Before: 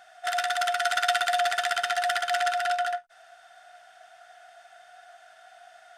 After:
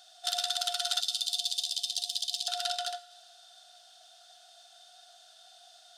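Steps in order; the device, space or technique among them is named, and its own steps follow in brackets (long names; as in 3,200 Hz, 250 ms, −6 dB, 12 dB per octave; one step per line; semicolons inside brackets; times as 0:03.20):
over-bright horn tweeter (high shelf with overshoot 2,800 Hz +12 dB, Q 3; brickwall limiter −7 dBFS, peak gain reduction 10.5 dB)
0:01.00–0:02.48: Chebyshev band-stop filter 360–3,900 Hz, order 2
dense smooth reverb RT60 1.6 s, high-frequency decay 0.95×, DRR 15.5 dB
level −9 dB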